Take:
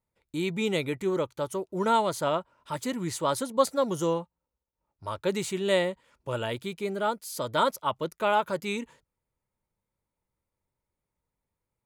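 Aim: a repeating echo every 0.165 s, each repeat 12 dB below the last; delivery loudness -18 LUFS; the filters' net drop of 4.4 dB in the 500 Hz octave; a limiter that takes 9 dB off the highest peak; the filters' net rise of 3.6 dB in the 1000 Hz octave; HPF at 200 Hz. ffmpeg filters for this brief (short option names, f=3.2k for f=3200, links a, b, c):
-af "highpass=200,equalizer=f=500:t=o:g=-7,equalizer=f=1k:t=o:g=6,alimiter=limit=-17.5dB:level=0:latency=1,aecho=1:1:165|330|495:0.251|0.0628|0.0157,volume=13.5dB"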